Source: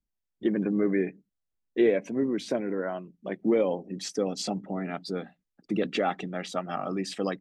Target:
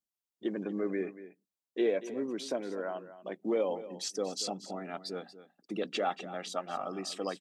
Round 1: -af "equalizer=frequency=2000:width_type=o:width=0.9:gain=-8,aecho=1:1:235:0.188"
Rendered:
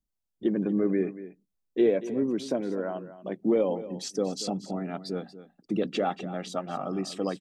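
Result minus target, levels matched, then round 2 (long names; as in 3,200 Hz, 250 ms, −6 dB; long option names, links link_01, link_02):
1,000 Hz band −3.5 dB
-af "highpass=frequency=720:poles=1,equalizer=frequency=2000:width_type=o:width=0.9:gain=-8,aecho=1:1:235:0.188"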